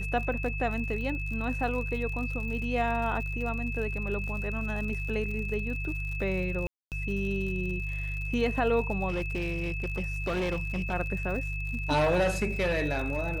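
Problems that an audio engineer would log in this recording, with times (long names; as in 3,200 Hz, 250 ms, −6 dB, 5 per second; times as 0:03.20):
surface crackle 81 per second −37 dBFS
mains hum 50 Hz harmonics 3 −34 dBFS
whistle 2,600 Hz −36 dBFS
0:06.67–0:06.92: drop-out 248 ms
0:09.08–0:10.94: clipping −26 dBFS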